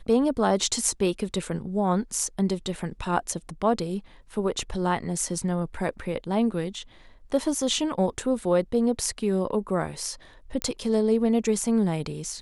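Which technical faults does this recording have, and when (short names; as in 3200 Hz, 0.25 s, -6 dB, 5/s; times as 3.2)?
10.62 pop -11 dBFS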